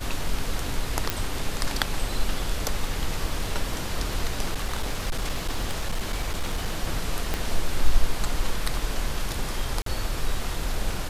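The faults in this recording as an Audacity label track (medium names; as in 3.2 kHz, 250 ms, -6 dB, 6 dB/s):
1.100000	1.100000	pop
4.510000	6.840000	clipped -21.5 dBFS
7.340000	7.340000	pop -11 dBFS
9.820000	9.860000	dropout 43 ms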